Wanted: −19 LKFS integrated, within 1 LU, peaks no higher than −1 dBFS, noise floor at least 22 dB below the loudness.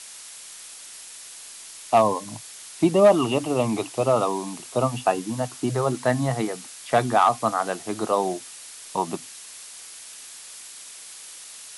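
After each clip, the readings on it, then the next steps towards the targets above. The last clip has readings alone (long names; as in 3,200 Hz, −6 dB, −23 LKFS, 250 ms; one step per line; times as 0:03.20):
background noise floor −42 dBFS; target noise floor −46 dBFS; integrated loudness −23.5 LKFS; sample peak −6.5 dBFS; target loudness −19.0 LKFS
→ broadband denoise 6 dB, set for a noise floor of −42 dBFS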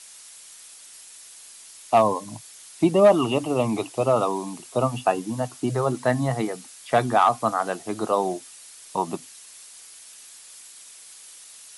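background noise floor −46 dBFS; integrated loudness −23.5 LKFS; sample peak −6.5 dBFS; target loudness −19.0 LKFS
→ level +4.5 dB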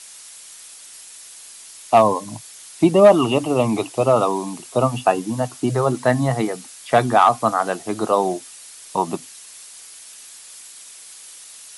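integrated loudness −19.0 LKFS; sample peak −2.0 dBFS; background noise floor −42 dBFS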